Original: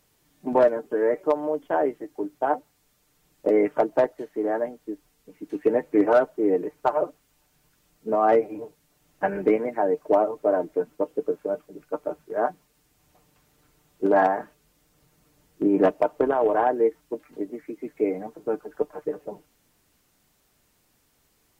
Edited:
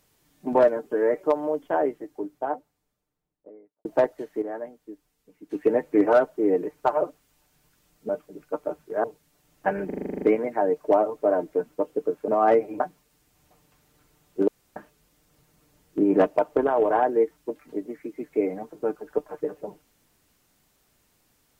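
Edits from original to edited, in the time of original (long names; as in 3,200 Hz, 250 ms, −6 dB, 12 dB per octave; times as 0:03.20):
0:01.47–0:03.85: fade out and dull
0:04.42–0:05.51: clip gain −8 dB
0:08.09–0:08.61: swap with 0:11.49–0:12.44
0:09.43: stutter 0.04 s, 10 plays
0:14.12–0:14.40: fill with room tone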